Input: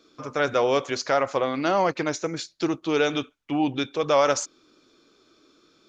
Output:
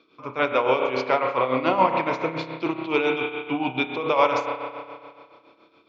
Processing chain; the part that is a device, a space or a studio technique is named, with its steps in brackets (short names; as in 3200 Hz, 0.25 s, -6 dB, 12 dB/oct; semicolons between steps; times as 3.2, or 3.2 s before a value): combo amplifier with spring reverb and tremolo (spring tank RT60 2.1 s, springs 31 ms, chirp 30 ms, DRR 2 dB; tremolo 7.1 Hz, depth 66%; speaker cabinet 79–4000 Hz, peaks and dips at 990 Hz +10 dB, 1700 Hz -5 dB, 2400 Hz +10 dB)